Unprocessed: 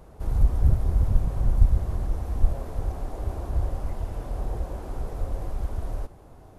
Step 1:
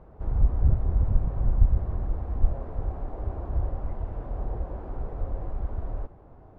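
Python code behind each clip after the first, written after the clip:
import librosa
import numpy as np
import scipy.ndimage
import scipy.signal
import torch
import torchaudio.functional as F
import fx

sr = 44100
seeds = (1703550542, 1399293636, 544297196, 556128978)

y = scipy.signal.sosfilt(scipy.signal.butter(2, 1600.0, 'lowpass', fs=sr, output='sos'), x)
y = y * librosa.db_to_amplitude(-1.5)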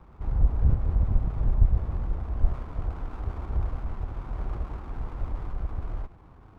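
y = fx.lower_of_two(x, sr, delay_ms=0.87)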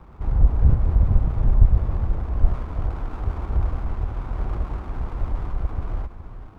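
y = x + 10.0 ** (-12.0 / 20.0) * np.pad(x, (int(416 * sr / 1000.0), 0))[:len(x)]
y = y * librosa.db_to_amplitude(5.5)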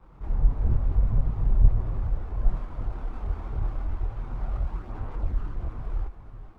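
y = fx.chorus_voices(x, sr, voices=4, hz=0.73, base_ms=24, depth_ms=4.7, mix_pct=60)
y = y * librosa.db_to_amplitude(-3.5)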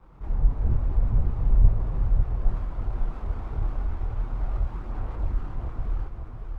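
y = x + 10.0 ** (-5.5 / 20.0) * np.pad(x, (int(549 * sr / 1000.0), 0))[:len(x)]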